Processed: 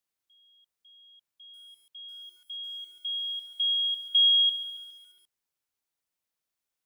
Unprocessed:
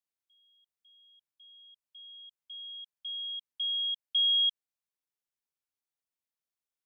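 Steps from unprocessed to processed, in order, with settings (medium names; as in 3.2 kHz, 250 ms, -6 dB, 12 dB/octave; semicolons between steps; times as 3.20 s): bit-crushed delay 138 ms, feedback 55%, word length 10-bit, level -10 dB; trim +5.5 dB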